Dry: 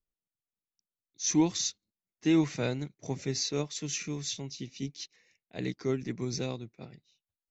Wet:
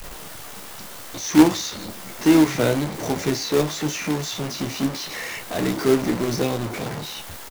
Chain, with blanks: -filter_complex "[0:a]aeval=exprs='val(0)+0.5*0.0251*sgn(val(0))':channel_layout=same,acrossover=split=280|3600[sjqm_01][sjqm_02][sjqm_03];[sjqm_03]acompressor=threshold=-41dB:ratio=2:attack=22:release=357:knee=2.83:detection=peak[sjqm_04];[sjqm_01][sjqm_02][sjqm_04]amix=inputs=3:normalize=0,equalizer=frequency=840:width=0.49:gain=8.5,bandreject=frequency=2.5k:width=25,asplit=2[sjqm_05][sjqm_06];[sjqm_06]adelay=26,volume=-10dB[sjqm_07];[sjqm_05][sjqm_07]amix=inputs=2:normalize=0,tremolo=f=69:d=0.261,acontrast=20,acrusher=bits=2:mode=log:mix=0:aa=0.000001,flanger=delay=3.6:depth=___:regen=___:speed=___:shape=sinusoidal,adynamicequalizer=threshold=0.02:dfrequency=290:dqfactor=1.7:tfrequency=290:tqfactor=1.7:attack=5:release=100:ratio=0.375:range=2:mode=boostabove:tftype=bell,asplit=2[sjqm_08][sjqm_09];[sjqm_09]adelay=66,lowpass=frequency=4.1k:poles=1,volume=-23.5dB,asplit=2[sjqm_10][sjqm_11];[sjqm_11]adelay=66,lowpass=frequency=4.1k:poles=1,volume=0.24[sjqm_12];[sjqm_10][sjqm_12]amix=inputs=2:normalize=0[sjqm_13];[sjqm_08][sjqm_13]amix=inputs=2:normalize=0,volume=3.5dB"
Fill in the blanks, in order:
7.6, -80, 0.97